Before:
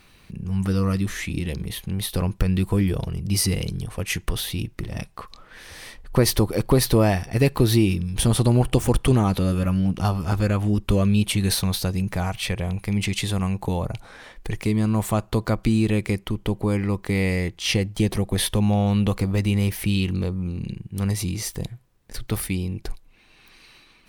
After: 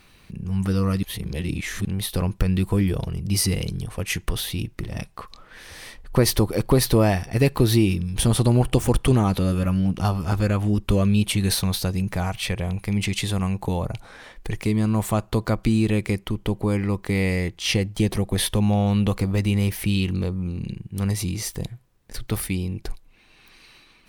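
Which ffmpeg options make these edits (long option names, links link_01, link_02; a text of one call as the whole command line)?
ffmpeg -i in.wav -filter_complex "[0:a]asplit=3[link_01][link_02][link_03];[link_01]atrim=end=1.032[link_04];[link_02]atrim=start=1.028:end=1.852,asetpts=PTS-STARTPTS,areverse[link_05];[link_03]atrim=start=1.848[link_06];[link_04][link_05]acrossfade=duration=0.004:curve1=hsin:curve2=hsin[link_07];[link_07][link_06]acrossfade=duration=0.004:curve1=hsin:curve2=hsin" out.wav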